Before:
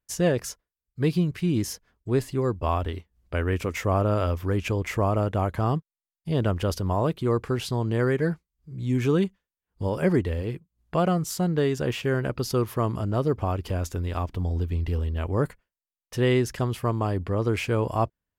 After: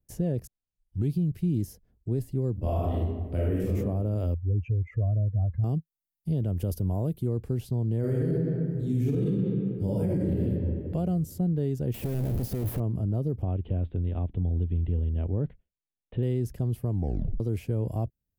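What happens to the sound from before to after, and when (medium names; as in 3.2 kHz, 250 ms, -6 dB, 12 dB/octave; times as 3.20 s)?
0.47 s: tape start 0.67 s
2.52–3.71 s: reverb throw, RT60 1.1 s, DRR -7.5 dB
4.34–5.64 s: spectral contrast enhancement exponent 2.8
6.56–7.26 s: treble shelf 4.3 kHz -> 6.6 kHz +11.5 dB
7.99–10.40 s: reverb throw, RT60 1.8 s, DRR -5.5 dB
11.94–12.80 s: one-bit comparator
13.42–16.23 s: steep low-pass 3.6 kHz 72 dB/octave
16.90 s: tape stop 0.50 s
whole clip: FFT filter 160 Hz 0 dB, 730 Hz -11 dB, 1.1 kHz -24 dB, 7.1 kHz -15 dB, 13 kHz -4 dB; peak limiter -19.5 dBFS; three bands compressed up and down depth 40%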